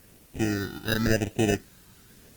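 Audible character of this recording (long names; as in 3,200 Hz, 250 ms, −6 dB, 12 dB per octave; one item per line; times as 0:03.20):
aliases and images of a low sample rate 1,100 Hz, jitter 0%
phaser sweep stages 6, 0.92 Hz, lowest notch 580–1,300 Hz
a quantiser's noise floor 10 bits, dither triangular
Opus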